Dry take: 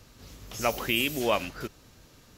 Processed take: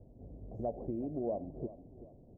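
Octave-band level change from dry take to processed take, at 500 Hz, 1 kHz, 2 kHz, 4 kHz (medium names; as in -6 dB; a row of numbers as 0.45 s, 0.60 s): -7.5 dB, -14.0 dB, under -40 dB, under -40 dB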